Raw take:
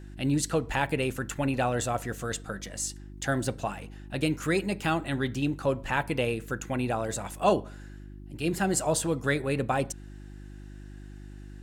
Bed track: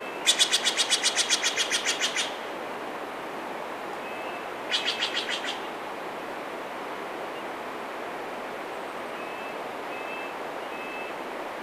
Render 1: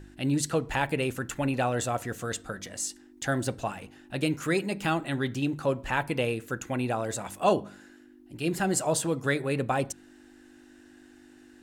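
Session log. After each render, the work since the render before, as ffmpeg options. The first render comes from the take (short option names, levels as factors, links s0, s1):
-af "bandreject=f=50:t=h:w=4,bandreject=f=100:t=h:w=4,bandreject=f=150:t=h:w=4,bandreject=f=200:t=h:w=4"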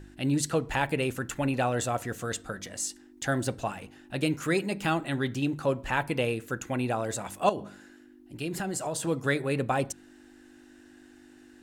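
-filter_complex "[0:a]asettb=1/sr,asplit=3[s0][s1][s2];[s0]atrim=end=7.494[s3];[s1]atrim=start=7.49:end=9.07,asetpts=PTS-STARTPTS,afade=t=in:d=0.004:c=qsin,afade=t=out:st=1.576:d=0.004:c=qsin,acompressor=threshold=0.0398:ratio=6:attack=3.2:release=140:knee=1:detection=peak[s4];[s2]atrim=start=9.066[s5];[s3][s4]acrossfade=d=0.004:c1=hsin:c2=qsin[s6];[s6][s5]acrossfade=d=0.004:c1=qsin:c2=hsin"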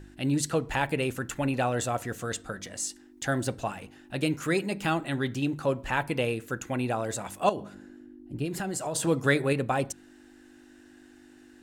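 -filter_complex "[0:a]asettb=1/sr,asplit=3[s0][s1][s2];[s0]atrim=end=2.214[s3];[s1]atrim=start=2.21:end=2.9,asetpts=PTS-STARTPTS,afade=t=in:d=0.004:c=qsin,afade=t=out:st=0.686:d=0.004:c=qsin,equalizer=f=13000:w=4.9:g=-7.5[s4];[s2]atrim=start=2.896[s5];[s3][s4]acrossfade=d=0.004:c1=hsin:c2=qsin[s6];[s6][s5]acrossfade=d=0.004:c1=qsin:c2=hsin,asplit=3[s7][s8][s9];[s7]afade=t=out:st=7.73:d=0.02[s10];[s8]tiltshelf=f=730:g=8,afade=t=in:st=7.73:d=0.02,afade=t=out:st=8.44:d=0.02[s11];[s9]afade=t=in:st=8.44:d=0.02[s12];[s10][s11][s12]amix=inputs=3:normalize=0,asplit=3[s13][s14][s15];[s13]atrim=end=8.952[s16];[s14]atrim=start=8.948:end=9.532,asetpts=PTS-STARTPTS,volume=1.5[s17];[s15]atrim=start=9.528[s18];[s16][s17]acrossfade=d=0.004:c1=hsin:c2=hsin[s19];[s19][s18]acrossfade=d=0.004:c1=hsin:c2=hsin"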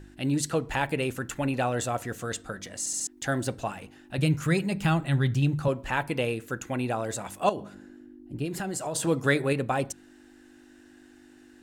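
-filter_complex "[0:a]asettb=1/sr,asplit=3[s0][s1][s2];[s0]atrim=end=4.184[s3];[s1]atrim=start=4.18:end=5.68,asetpts=PTS-STARTPTS,afade=t=in:d=0.004:c=qsin,afade=t=out:st=1.496:d=0.004:c=qsin,lowshelf=f=200:t=q:w=1.5:g=8.5[s4];[s2]atrim=start=5.676[s5];[s3][s4]acrossfade=d=0.004:c1=hsin:c2=qsin[s6];[s6][s5]acrossfade=d=0.004:c1=qsin:c2=hsin,asplit=5[s7][s8][s9][s10][s11];[s7]atrim=end=2.862[s12];[s8]atrim=start=2.788:end=2.862[s13];[s9]atrim=start=2.788:end=2.862[s14];[s10]atrim=start=2.788:end=2.862[s15];[s11]atrim=start=3.068[s16];[s12][s13]acrossfade=d=0.004:c1=hsin:c2=hsin[s17];[s17][s14]acrossfade=d=0.004:c1=hsin:c2=hsin[s18];[s18][s15]acrossfade=d=0.004:c1=hsin:c2=hsin[s19];[s19][s16]acrossfade=d=0.004:c1=hsin:c2=hsin"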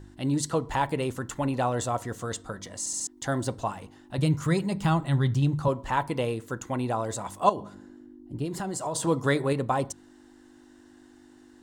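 -af "equalizer=f=100:t=o:w=0.33:g=4,equalizer=f=1000:t=o:w=0.33:g=8,equalizer=f=1600:t=o:w=0.33:g=-5,equalizer=f=2500:t=o:w=0.33:g=-9,equalizer=f=12500:t=o:w=0.33:g=-8"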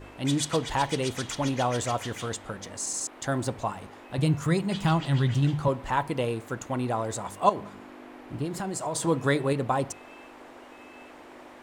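-filter_complex "[1:a]volume=0.2[s0];[0:a][s0]amix=inputs=2:normalize=0"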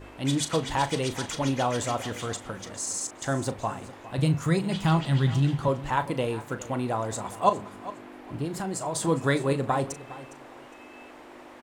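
-filter_complex "[0:a]asplit=2[s0][s1];[s1]adelay=37,volume=0.251[s2];[s0][s2]amix=inputs=2:normalize=0,aecho=1:1:409|818:0.15|0.0374"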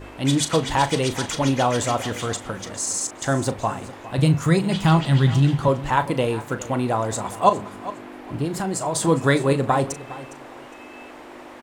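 -af "volume=2,alimiter=limit=0.708:level=0:latency=1"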